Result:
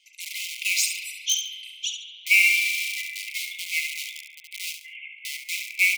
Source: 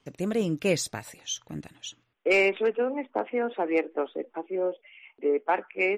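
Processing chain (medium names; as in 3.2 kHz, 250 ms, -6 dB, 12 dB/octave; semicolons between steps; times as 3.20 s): reverb removal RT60 1.3 s; spring tank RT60 1.9 s, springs 31 ms, chirp 45 ms, DRR 3 dB; in parallel at -8 dB: integer overflow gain 23.5 dB; on the sum: brick-wall FIR high-pass 2 kHz; on a send: feedback delay 70 ms, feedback 27%, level -8 dB; on the sum: endings held to a fixed fall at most 170 dB/s; trim +7.5 dB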